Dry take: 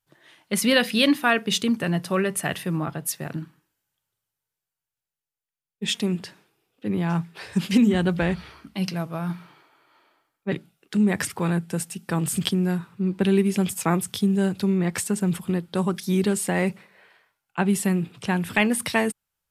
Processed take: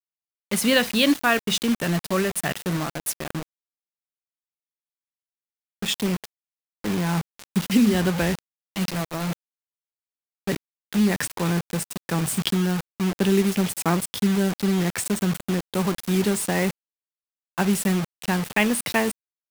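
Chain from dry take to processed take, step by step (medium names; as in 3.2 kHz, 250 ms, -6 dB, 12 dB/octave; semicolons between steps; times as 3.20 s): 2.77–3.35 s: peaking EQ 83 Hz -4.5 dB 1.3 oct; bit crusher 5-bit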